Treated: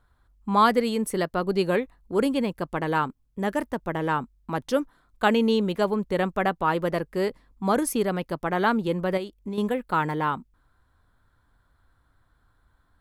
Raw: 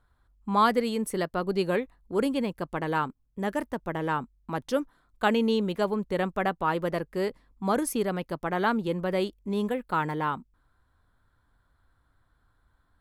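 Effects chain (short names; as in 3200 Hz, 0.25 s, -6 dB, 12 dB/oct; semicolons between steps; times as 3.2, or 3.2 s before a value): 9.17–9.58 compressor 5:1, threshold -33 dBFS, peak gain reduction 9 dB; gain +3 dB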